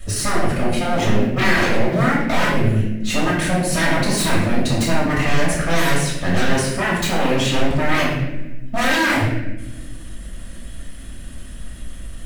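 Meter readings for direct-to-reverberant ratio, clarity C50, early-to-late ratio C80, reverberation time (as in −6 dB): −6.5 dB, 1.5 dB, 4.5 dB, 1.1 s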